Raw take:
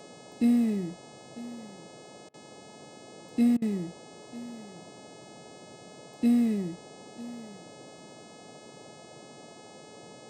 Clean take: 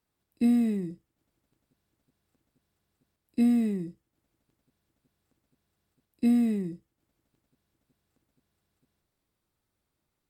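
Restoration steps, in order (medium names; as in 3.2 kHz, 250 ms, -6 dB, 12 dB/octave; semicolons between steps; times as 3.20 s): de-hum 424.7 Hz, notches 21; interpolate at 2.29/3.57 s, 48 ms; noise print and reduce 30 dB; inverse comb 948 ms -18.5 dB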